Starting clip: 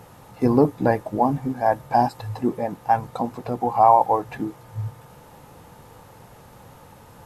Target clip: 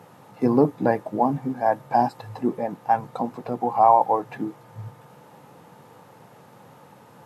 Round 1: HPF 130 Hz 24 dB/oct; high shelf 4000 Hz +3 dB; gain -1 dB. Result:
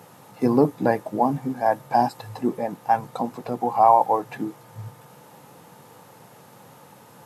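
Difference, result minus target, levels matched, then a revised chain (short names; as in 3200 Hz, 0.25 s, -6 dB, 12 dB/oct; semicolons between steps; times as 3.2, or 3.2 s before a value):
8000 Hz band +7.5 dB
HPF 130 Hz 24 dB/oct; high shelf 4000 Hz -6.5 dB; gain -1 dB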